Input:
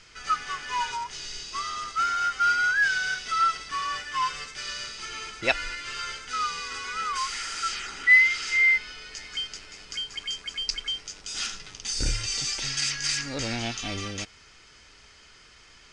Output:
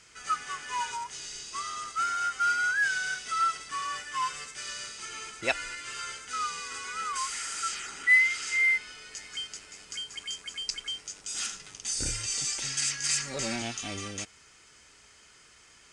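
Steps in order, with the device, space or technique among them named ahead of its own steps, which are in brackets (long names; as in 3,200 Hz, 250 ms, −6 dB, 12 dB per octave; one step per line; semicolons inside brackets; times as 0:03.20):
0:13.09–0:13.62: comb filter 5.2 ms, depth 76%
budget condenser microphone (high-pass filter 91 Hz 6 dB per octave; high shelf with overshoot 6,400 Hz +8 dB, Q 1.5)
level −3.5 dB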